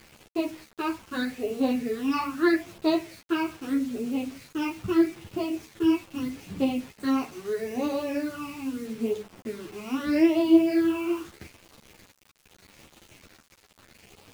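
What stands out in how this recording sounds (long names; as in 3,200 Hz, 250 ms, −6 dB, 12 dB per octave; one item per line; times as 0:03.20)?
phaser sweep stages 8, 0.79 Hz, lowest notch 520–1,700 Hz
a quantiser's noise floor 8 bits, dither none
a shimmering, thickened sound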